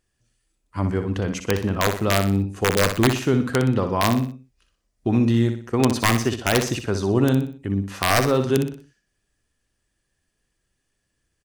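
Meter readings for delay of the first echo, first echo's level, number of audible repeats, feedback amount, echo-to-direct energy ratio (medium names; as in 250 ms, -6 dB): 61 ms, -8.0 dB, 4, 39%, -7.5 dB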